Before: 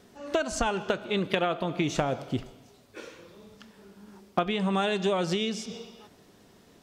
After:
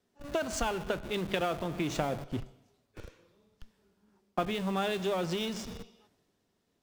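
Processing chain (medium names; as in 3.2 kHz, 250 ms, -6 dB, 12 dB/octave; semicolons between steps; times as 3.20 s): de-hum 66.1 Hz, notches 3; in parallel at -4 dB: Schmitt trigger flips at -35.5 dBFS; on the sum: three bands expanded up and down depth 40%; trim -7 dB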